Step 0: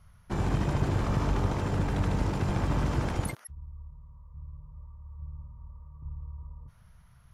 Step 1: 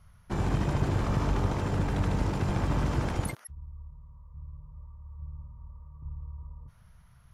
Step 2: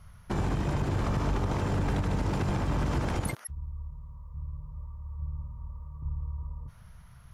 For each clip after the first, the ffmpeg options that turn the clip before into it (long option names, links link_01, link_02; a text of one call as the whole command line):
ffmpeg -i in.wav -af anull out.wav
ffmpeg -i in.wav -af "alimiter=level_in=2dB:limit=-24dB:level=0:latency=1:release=147,volume=-2dB,volume=5.5dB" out.wav